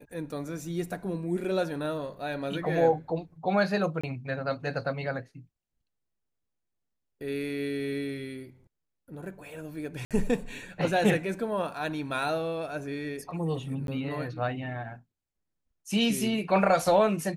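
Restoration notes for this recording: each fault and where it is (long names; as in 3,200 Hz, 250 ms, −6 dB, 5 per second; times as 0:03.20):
0:04.01–0:04.04: drop-out 25 ms
0:10.05–0:10.11: drop-out 57 ms
0:13.87–0:13.88: drop-out 12 ms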